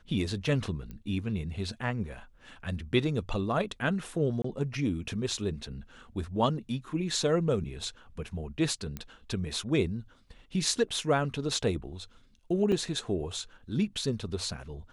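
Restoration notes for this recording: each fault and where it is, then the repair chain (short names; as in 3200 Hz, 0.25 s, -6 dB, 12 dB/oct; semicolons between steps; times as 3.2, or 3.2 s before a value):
0.91 pop -29 dBFS
4.42–4.44 gap 24 ms
8.97 pop -22 dBFS
12.72 gap 4.2 ms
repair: de-click; interpolate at 4.42, 24 ms; interpolate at 12.72, 4.2 ms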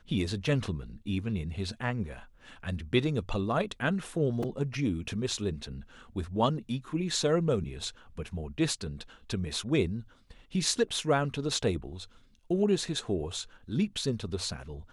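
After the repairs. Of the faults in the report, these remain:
none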